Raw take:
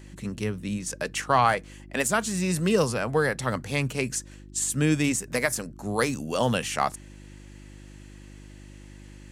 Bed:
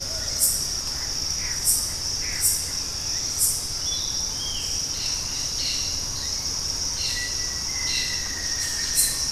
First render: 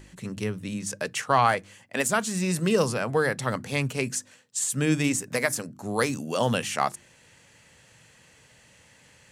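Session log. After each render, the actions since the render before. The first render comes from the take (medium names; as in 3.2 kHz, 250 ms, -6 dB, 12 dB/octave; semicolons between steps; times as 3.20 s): de-hum 50 Hz, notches 7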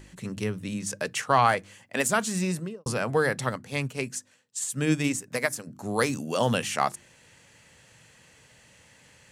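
2.37–2.86 s: studio fade out; 3.49–5.67 s: upward expansion, over -35 dBFS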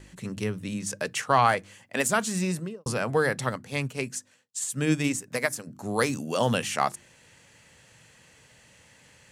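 gate with hold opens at -54 dBFS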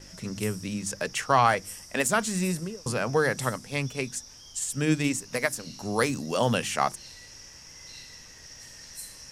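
add bed -20.5 dB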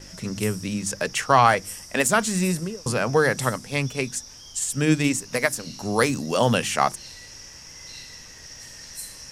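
trim +4.5 dB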